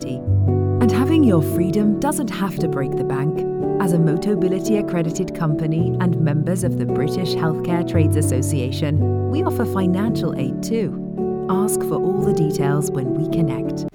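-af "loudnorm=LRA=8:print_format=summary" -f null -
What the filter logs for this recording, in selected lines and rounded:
Input Integrated:    -19.8 LUFS
Input True Peak:      -2.9 dBTP
Input LRA:             1.6 LU
Input Threshold:     -29.8 LUFS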